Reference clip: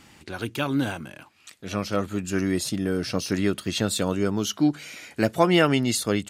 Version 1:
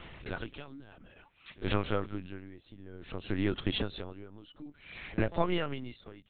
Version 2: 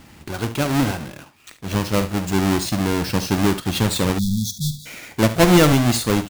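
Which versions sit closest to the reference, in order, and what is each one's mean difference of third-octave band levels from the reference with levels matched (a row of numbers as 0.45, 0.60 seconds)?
2, 1; 7.5, 11.5 decibels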